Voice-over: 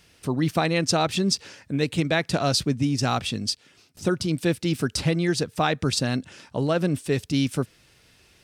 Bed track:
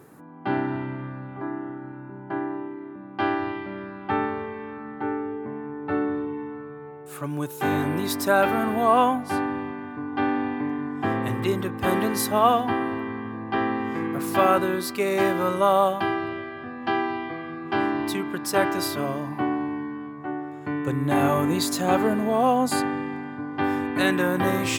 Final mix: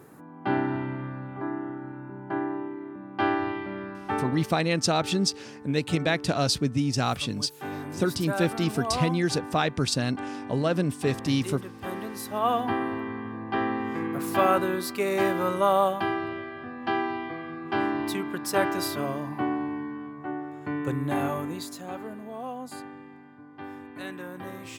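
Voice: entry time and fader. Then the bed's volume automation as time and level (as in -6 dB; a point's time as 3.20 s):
3.95 s, -2.0 dB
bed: 3.93 s -0.5 dB
4.61 s -11.5 dB
12.23 s -11.5 dB
12.64 s -2.5 dB
20.91 s -2.5 dB
21.93 s -16 dB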